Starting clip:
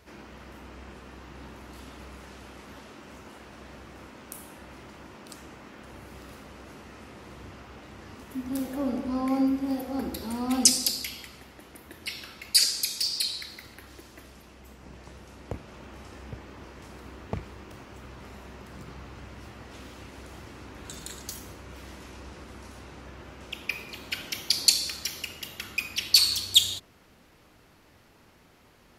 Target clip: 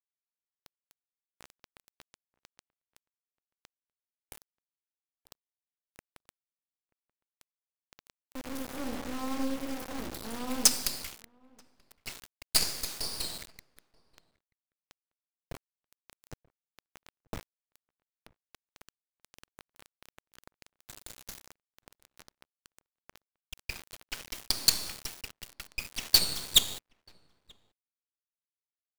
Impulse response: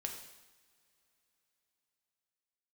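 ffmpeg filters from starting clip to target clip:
-filter_complex "[0:a]acrusher=bits=3:dc=4:mix=0:aa=0.000001,asplit=2[s0][s1];[s1]adelay=932.9,volume=0.0501,highshelf=f=4000:g=-21[s2];[s0][s2]amix=inputs=2:normalize=0,volume=0.668"

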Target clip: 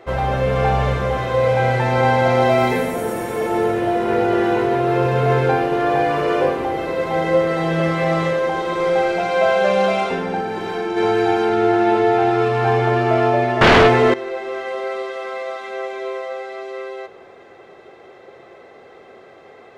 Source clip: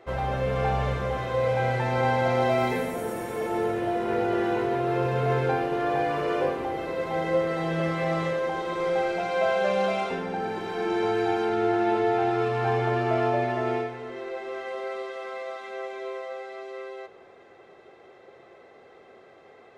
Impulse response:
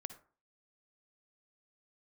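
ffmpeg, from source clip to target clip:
-filter_complex "[0:a]asplit=3[s0][s1][s2];[s0]afade=t=out:st=10.4:d=0.02[s3];[s1]acompressor=threshold=0.0398:ratio=6,afade=t=in:st=10.4:d=0.02,afade=t=out:st=10.96:d=0.02[s4];[s2]afade=t=in:st=10.96:d=0.02[s5];[s3][s4][s5]amix=inputs=3:normalize=0,asettb=1/sr,asplit=3[s6][s7][s8];[s6]atrim=end=13.614[s9];[s7]atrim=start=13.61:end=14.14,asetpts=PTS-STARTPTS,afade=t=in:d=0.004:c=qsin,afade=t=out:st=0.526:d=0.004:c=qsin,aeval=exprs='0.178*sin(PI/2*4.47*val(0)/0.178)':c=same[s10];[s8]atrim=start=14.136[s11];[s9][s10]acrossfade=d=0.004:c1=hsin:c2=qsin[s12];[s12][s11]acrossfade=d=0.004:c1=qsin:c2=hsin,volume=2.51"

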